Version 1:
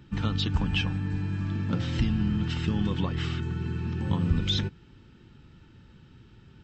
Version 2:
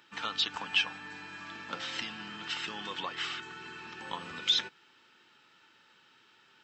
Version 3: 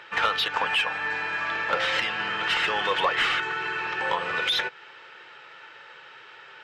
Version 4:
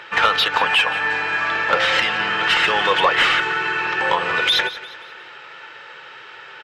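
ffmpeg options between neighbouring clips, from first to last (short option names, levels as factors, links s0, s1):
-af "highpass=850,volume=1.41"
-filter_complex "[0:a]equalizer=f=125:t=o:w=1:g=7,equalizer=f=250:t=o:w=1:g=-12,equalizer=f=500:t=o:w=1:g=11,equalizer=f=2000:t=o:w=1:g=6,alimiter=limit=0.1:level=0:latency=1:release=275,asplit=2[s0][s1];[s1]highpass=f=720:p=1,volume=3.98,asoftclip=type=tanh:threshold=0.1[s2];[s0][s2]amix=inputs=2:normalize=0,lowpass=f=1600:p=1,volume=0.501,volume=2.82"
-af "aecho=1:1:176|352|528|704:0.168|0.0688|0.0282|0.0116,volume=2.37"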